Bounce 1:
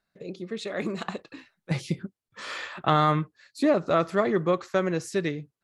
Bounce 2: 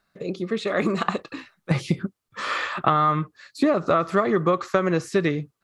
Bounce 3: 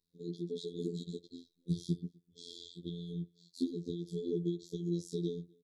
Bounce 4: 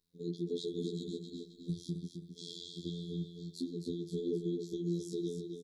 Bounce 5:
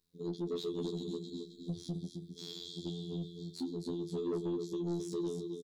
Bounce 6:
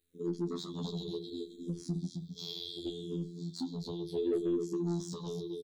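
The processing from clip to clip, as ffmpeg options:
-filter_complex "[0:a]acrossover=split=3400[a][b];[b]acompressor=threshold=-47dB:ratio=4:attack=1:release=60[c];[a][c]amix=inputs=2:normalize=0,equalizer=f=1.2k:t=o:w=0.29:g=7.5,acompressor=threshold=-24dB:ratio=10,volume=8dB"
-filter_complex "[0:a]asplit=2[a][b];[b]adelay=250.7,volume=-29dB,highshelf=f=4k:g=-5.64[c];[a][c]amix=inputs=2:normalize=0,afftfilt=real='re*(1-between(b*sr/4096,480,3200))':imag='im*(1-between(b*sr/4096,480,3200))':win_size=4096:overlap=0.75,afftfilt=real='hypot(re,im)*cos(PI*b)':imag='0':win_size=2048:overlap=0.75,volume=-8.5dB"
-filter_complex "[0:a]alimiter=level_in=5dB:limit=-24dB:level=0:latency=1:release=342,volume=-5dB,asplit=2[a][b];[b]aecho=0:1:264|528|792|1056:0.473|0.161|0.0547|0.0186[c];[a][c]amix=inputs=2:normalize=0,volume=3dB"
-filter_complex "[0:a]asoftclip=type=tanh:threshold=-32dB,asplit=2[a][b];[b]adelay=26,volume=-14dB[c];[a][c]amix=inputs=2:normalize=0,volume=2dB"
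-filter_complex "[0:a]asplit=2[a][b];[b]afreqshift=-0.69[c];[a][c]amix=inputs=2:normalize=1,volume=5dB"

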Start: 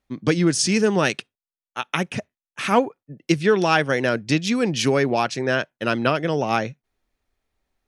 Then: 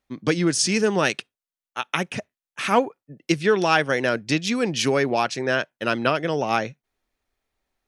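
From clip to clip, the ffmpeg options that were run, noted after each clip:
-af "lowshelf=f=250:g=-5.5"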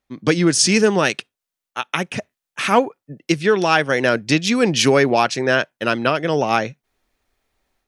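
-af "dynaudnorm=f=130:g=3:m=8dB"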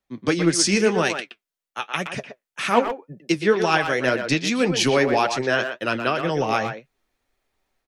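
-filter_complex "[0:a]flanger=delay=4.9:depth=6.1:regen=51:speed=1.9:shape=triangular,acrossover=split=120|1200|2500[a][b][c][d];[a]aeval=exprs='clip(val(0),-1,0.00668)':c=same[e];[e][b][c][d]amix=inputs=4:normalize=0,asplit=2[f][g];[g]adelay=120,highpass=300,lowpass=3.4k,asoftclip=type=hard:threshold=-13dB,volume=-7dB[h];[f][h]amix=inputs=2:normalize=0"

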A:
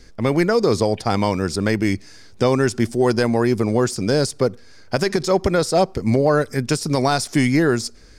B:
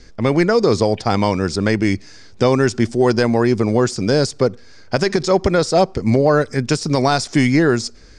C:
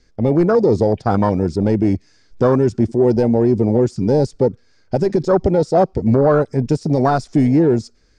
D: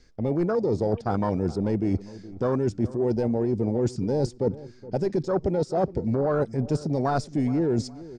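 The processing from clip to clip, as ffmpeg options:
-af "lowpass=f=7.7k:w=0.5412,lowpass=f=7.7k:w=1.3066,volume=2.5dB"
-af "acontrast=90,afwtdn=0.282,volume=-4dB"
-filter_complex "[0:a]areverse,acompressor=threshold=-22dB:ratio=6,areverse,asplit=2[a][b];[b]adelay=419,lowpass=f=1.2k:p=1,volume=-17dB,asplit=2[c][d];[d]adelay=419,lowpass=f=1.2k:p=1,volume=0.4,asplit=2[e][f];[f]adelay=419,lowpass=f=1.2k:p=1,volume=0.4[g];[a][c][e][g]amix=inputs=4:normalize=0"

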